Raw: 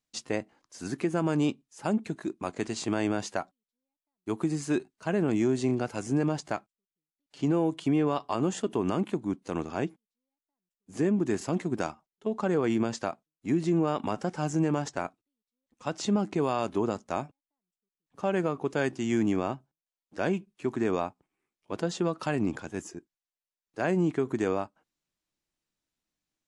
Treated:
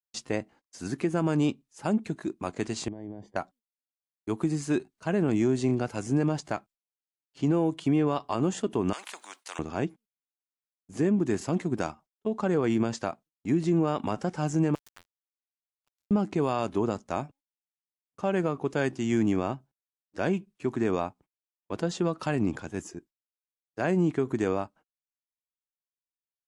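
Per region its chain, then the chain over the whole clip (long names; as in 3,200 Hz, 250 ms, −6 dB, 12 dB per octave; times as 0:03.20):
0:02.88–0:03.36: downward compressor, threshold −35 dBFS + moving average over 33 samples
0:08.93–0:09.59: high-pass filter 870 Hz 24 dB per octave + every bin compressed towards the loudest bin 2 to 1
0:14.75–0:16.11: high-pass filter 1,100 Hz 24 dB per octave + downward compressor, threshold −45 dBFS + centre clipping without the shift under −39 dBFS
whole clip: noise gate −53 dBFS, range −31 dB; low-shelf EQ 120 Hz +6.5 dB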